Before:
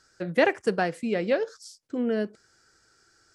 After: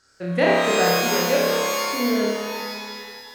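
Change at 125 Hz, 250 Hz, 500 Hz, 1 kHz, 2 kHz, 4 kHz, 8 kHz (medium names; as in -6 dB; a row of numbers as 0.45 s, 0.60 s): +7.5 dB, +4.5 dB, +6.0 dB, +9.5 dB, +7.5 dB, +16.0 dB, +22.0 dB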